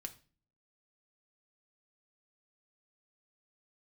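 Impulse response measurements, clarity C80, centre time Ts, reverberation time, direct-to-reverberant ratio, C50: 21.0 dB, 6 ms, 0.40 s, 4.5 dB, 16.0 dB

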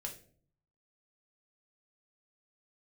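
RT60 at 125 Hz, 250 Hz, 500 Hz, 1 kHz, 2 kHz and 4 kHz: 0.95 s, 0.75 s, 0.60 s, 0.45 s, 0.35 s, 0.35 s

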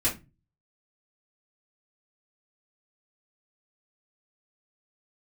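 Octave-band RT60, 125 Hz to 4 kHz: 0.55 s, 0.40 s, 0.25 s, 0.25 s, 0.20 s, 0.20 s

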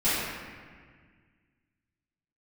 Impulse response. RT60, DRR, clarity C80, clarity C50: 1.7 s, -15.5 dB, -0.5 dB, -3.5 dB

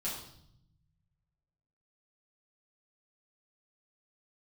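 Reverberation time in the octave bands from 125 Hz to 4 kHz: 2.1 s, 1.4 s, 0.75 s, 0.65 s, 0.60 s, 0.70 s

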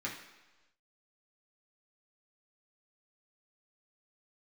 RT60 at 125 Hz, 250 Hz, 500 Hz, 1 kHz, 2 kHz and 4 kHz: 1.0 s, 1.0 s, 1.1 s, 1.1 s, 1.1 s, 1.2 s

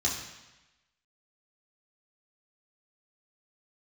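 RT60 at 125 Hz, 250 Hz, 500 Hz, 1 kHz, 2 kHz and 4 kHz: 1.1 s, 1.0 s, 1.0 s, 1.1 s, 1.1 s, 1.1 s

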